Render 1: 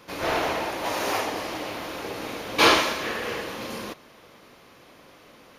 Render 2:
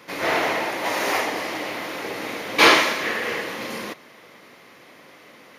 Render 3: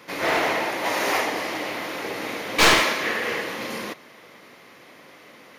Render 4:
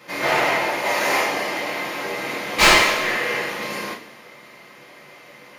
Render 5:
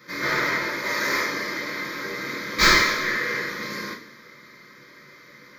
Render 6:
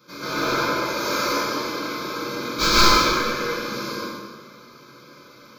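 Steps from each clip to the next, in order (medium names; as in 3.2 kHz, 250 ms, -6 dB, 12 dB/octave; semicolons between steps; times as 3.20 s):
high-pass 140 Hz 12 dB/octave; peaking EQ 2 kHz +7.5 dB 0.36 oct; trim +2.5 dB
one-sided wavefolder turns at -14 dBFS
two-slope reverb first 0.29 s, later 1.5 s, from -18 dB, DRR -4.5 dB; trim -2.5 dB
static phaser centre 2.8 kHz, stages 6
Butterworth band-stop 1.9 kHz, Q 2.5; plate-style reverb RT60 1.4 s, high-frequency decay 0.7×, pre-delay 105 ms, DRR -7 dB; trim -3 dB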